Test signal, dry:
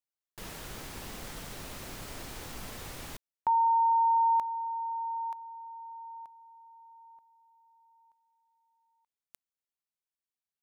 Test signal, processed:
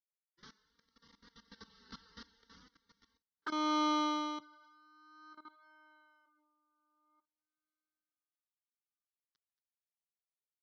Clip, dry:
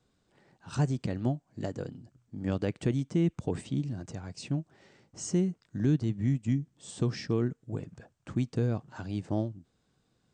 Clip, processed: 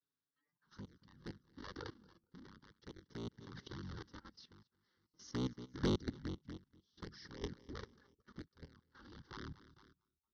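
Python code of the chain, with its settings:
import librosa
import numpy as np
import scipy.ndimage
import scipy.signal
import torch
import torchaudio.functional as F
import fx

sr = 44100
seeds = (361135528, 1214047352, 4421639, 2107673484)

p1 = fx.cycle_switch(x, sr, every=3, mode='inverted')
p2 = fx.env_flanger(p1, sr, rest_ms=7.3, full_db=-22.5)
p3 = scipy.signal.sosfilt(scipy.signal.butter(16, 6100.0, 'lowpass', fs=sr, output='sos'), p2)
p4 = fx.high_shelf(p3, sr, hz=2100.0, db=2.5)
p5 = fx.fixed_phaser(p4, sr, hz=2500.0, stages=6)
p6 = p5 + fx.echo_feedback(p5, sr, ms=227, feedback_pct=47, wet_db=-20.0, dry=0)
p7 = fx.vibrato(p6, sr, rate_hz=0.41, depth_cents=22.0)
p8 = fx.noise_reduce_blind(p7, sr, reduce_db=18)
p9 = fx.highpass(p8, sr, hz=190.0, slope=6)
p10 = fx.level_steps(p9, sr, step_db=17)
p11 = 10.0 ** (-27.0 / 20.0) * np.tanh(p10 / 10.0 ** (-27.0 / 20.0))
p12 = p11 * 10.0 ** (-18 * (0.5 - 0.5 * np.cos(2.0 * np.pi * 0.52 * np.arange(len(p11)) / sr)) / 20.0)
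y = F.gain(torch.from_numpy(p12), 4.5).numpy()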